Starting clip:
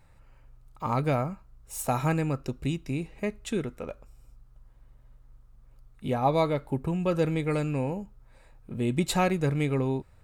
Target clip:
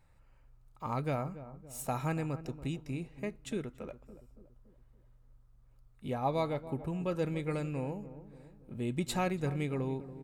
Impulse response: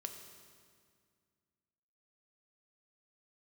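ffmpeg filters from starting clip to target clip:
-filter_complex "[0:a]asplit=2[s0][s1];[s1]adelay=283,lowpass=f=900:p=1,volume=0.224,asplit=2[s2][s3];[s3]adelay=283,lowpass=f=900:p=1,volume=0.53,asplit=2[s4][s5];[s5]adelay=283,lowpass=f=900:p=1,volume=0.53,asplit=2[s6][s7];[s7]adelay=283,lowpass=f=900:p=1,volume=0.53,asplit=2[s8][s9];[s9]adelay=283,lowpass=f=900:p=1,volume=0.53[s10];[s0][s2][s4][s6][s8][s10]amix=inputs=6:normalize=0,volume=0.422"

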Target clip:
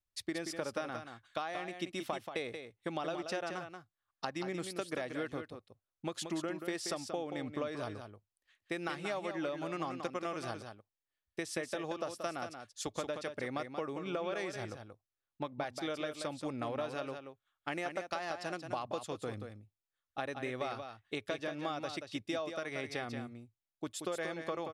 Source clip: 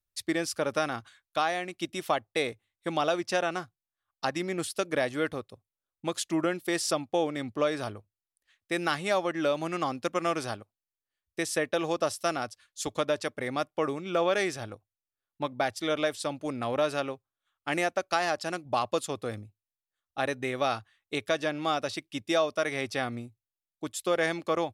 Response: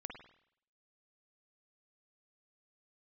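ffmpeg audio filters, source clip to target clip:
-af "highshelf=f=7300:g=-9,acompressor=threshold=0.0251:ratio=6,aecho=1:1:181:0.422,volume=0.75"

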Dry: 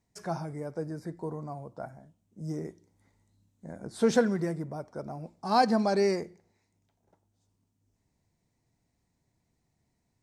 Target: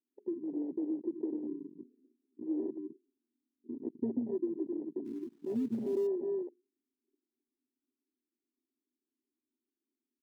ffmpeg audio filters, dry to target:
-filter_complex "[0:a]asplit=2[s0][s1];[s1]adelay=260,highpass=300,lowpass=3400,asoftclip=type=hard:threshold=0.1,volume=0.355[s2];[s0][s2]amix=inputs=2:normalize=0,acontrast=61,asuperpass=centerf=310:order=12:qfactor=1.8,acompressor=threshold=0.02:ratio=6,asettb=1/sr,asplit=3[s3][s4][s5];[s3]atrim=end=5.054[s6];[s4]atrim=start=5.05:end=6.07,asetpts=PTS-STARTPTS,afade=t=in:d=0.004:c=qsin,afade=t=out:st=1.016:d=0.004:c=qsin,acrusher=bits=3:mode=log:mix=0:aa=0.000001[s7];[s5]atrim=start=6.066[s8];[s6][s7]acrossfade=d=0.004:c1=hsin:c2=qsin[s9];[s9][s8]acrossfade=d=0.004:c1=qsin:c2=hsin,afwtdn=0.0224,volume=1.41"

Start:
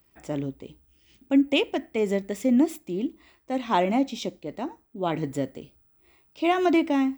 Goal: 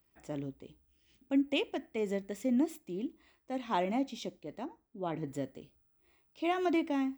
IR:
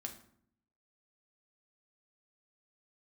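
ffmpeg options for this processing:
-filter_complex "[0:a]asettb=1/sr,asplit=3[s0][s1][s2];[s0]atrim=end=4.654[s3];[s1]atrim=start=4.65:end=5.28,asetpts=PTS-STARTPTS,afade=t=in:d=0.004:c=qsin,afade=t=out:st=0.626:d=0.004:c=qsin,highshelf=f=2500:g=-8.5[s4];[s2]atrim=start=5.276[s5];[s3][s4]acrossfade=d=0.004:c1=hsin:c2=qsin[s6];[s6][s5]acrossfade=d=0.004:c1=qsin:c2=hsin,volume=0.355"

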